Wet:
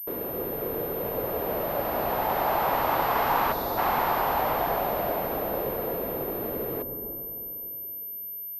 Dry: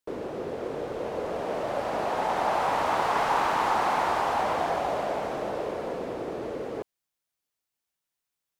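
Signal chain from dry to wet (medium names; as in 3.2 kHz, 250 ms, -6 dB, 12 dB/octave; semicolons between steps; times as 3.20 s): time-frequency box 3.52–3.78 s, 730–3400 Hz -12 dB; on a send at -11.5 dB: tilt EQ -4.5 dB/octave + reverberation RT60 3.3 s, pre-delay 97 ms; on the sum: class-D stage that switches slowly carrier 13 kHz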